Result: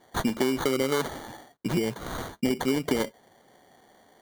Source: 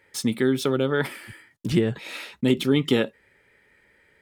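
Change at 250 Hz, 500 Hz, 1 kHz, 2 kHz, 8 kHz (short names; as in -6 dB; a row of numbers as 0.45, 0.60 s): -4.5, -3.5, +3.0, -3.5, -0.5 dB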